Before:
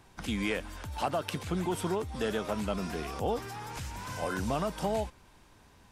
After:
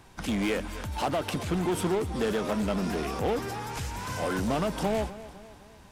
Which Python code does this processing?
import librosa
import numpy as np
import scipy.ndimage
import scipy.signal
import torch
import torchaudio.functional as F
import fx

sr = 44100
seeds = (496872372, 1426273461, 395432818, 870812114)

p1 = fx.dynamic_eq(x, sr, hz=290.0, q=0.79, threshold_db=-43.0, ratio=4.0, max_db=5)
p2 = 10.0 ** (-31.5 / 20.0) * (np.abs((p1 / 10.0 ** (-31.5 / 20.0) + 3.0) % 4.0 - 2.0) - 1.0)
p3 = p1 + F.gain(torch.from_numpy(p2), -3.0).numpy()
y = fx.echo_feedback(p3, sr, ms=252, feedback_pct=50, wet_db=-16)